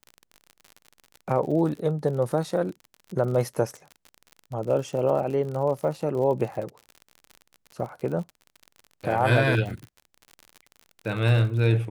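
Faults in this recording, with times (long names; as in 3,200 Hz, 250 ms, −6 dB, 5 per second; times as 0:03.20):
surface crackle 50 per second −33 dBFS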